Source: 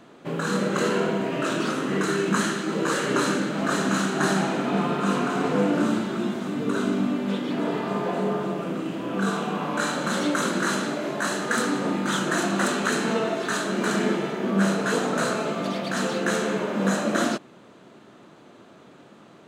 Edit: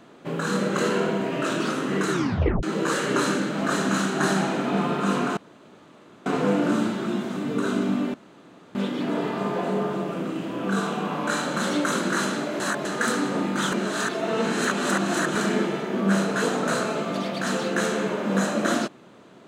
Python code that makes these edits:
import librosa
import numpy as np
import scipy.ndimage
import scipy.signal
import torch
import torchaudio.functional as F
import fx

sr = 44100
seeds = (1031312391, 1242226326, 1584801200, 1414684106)

y = fx.edit(x, sr, fx.tape_stop(start_s=2.11, length_s=0.52),
    fx.insert_room_tone(at_s=5.37, length_s=0.89),
    fx.insert_room_tone(at_s=7.25, length_s=0.61),
    fx.reverse_span(start_s=11.1, length_s=0.25),
    fx.reverse_span(start_s=12.22, length_s=1.63), tone=tone)